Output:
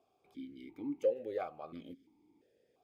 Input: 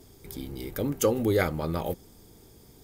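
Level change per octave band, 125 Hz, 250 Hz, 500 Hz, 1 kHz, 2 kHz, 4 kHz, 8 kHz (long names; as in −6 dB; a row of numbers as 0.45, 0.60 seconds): −28.5 dB, −13.0 dB, −9.0 dB, −11.5 dB, −20.5 dB, below −20 dB, below −30 dB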